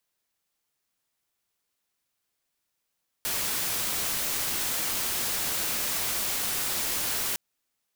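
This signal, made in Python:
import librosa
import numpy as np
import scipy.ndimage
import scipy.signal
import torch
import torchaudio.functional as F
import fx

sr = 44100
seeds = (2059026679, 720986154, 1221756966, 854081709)

y = fx.noise_colour(sr, seeds[0], length_s=4.11, colour='white', level_db=-29.0)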